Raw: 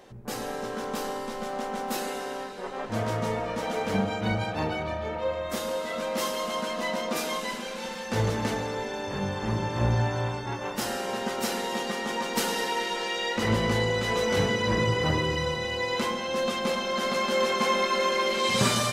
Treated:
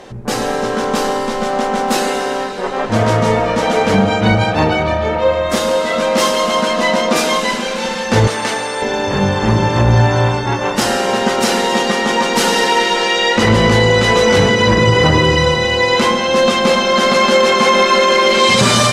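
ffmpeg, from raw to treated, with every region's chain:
-filter_complex "[0:a]asettb=1/sr,asplit=3[s0][s1][s2];[s0]atrim=end=8.274[s3];[s1]atrim=start=8.27:end=8.82,asetpts=PTS-STARTPTS,afade=t=in:d=0.004:c=qsin,afade=t=out:st=0.546:d=0.004:c=qsin,highpass=f=930:p=1,aeval=exprs='val(0)+0.00398*sin(2*PI*8700*n/s)':c=same[s4];[s2]atrim=start=8.816[s5];[s3][s4]acrossfade=d=0.004:c1=hsin:c2=qsin[s6];[s6][s5]acrossfade=d=0.004:c1=qsin:c2=hsin,lowpass=9300,alimiter=level_in=6.68:limit=0.891:release=50:level=0:latency=1,volume=0.891"

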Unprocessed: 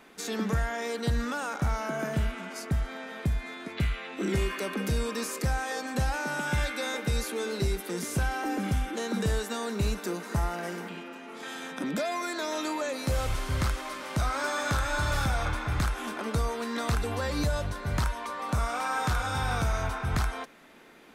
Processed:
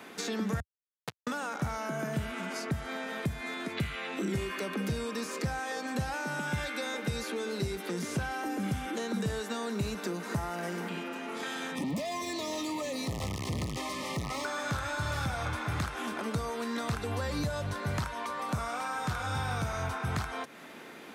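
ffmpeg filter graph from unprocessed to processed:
-filter_complex "[0:a]asettb=1/sr,asplit=3[s0][s1][s2];[s0]atrim=end=0.604[s3];[s1]atrim=start=0.6:end=1.27,asetpts=PTS-STARTPTS,afade=t=in:d=0.004:c=qsin,afade=t=out:st=0.666:d=0.004:c=qsin,highpass=f=71:w=0.5412,highpass=f=71:w=1.3066,acrusher=bits=2:mix=0:aa=0.5[s4];[s2]atrim=start=1.266[s5];[s3][s4]acrossfade=d=0.004:c1=hsin:c2=qsin[s6];[s6][s5]acrossfade=d=0.004:c1=qsin:c2=hsin,asettb=1/sr,asplit=3[s7][s8][s9];[s7]atrim=end=11.754[s10];[s8]atrim=start=11.75:end=14.45,asetpts=PTS-STARTPTS,afade=t=in:d=0.004:c=qsin,afade=t=out:st=2.696:d=0.004:c=qsin,bass=f=250:g=9,treble=f=4000:g=8,volume=31.6,asoftclip=hard,volume=0.0316,asuperstop=centerf=1500:order=20:qfactor=3.3[s11];[s9]atrim=start=14.446[s12];[s10][s11]acrossfade=d=0.004:c1=hsin:c2=qsin[s13];[s13][s12]acrossfade=d=0.004:c1=qsin:c2=hsin,highpass=f=80:w=0.5412,highpass=f=80:w=1.3066,acrossover=split=140|6300[s14][s15][s16];[s14]acompressor=threshold=0.00794:ratio=4[s17];[s15]acompressor=threshold=0.00891:ratio=4[s18];[s16]acompressor=threshold=0.001:ratio=4[s19];[s17][s18][s19]amix=inputs=3:normalize=0,volume=2.11"

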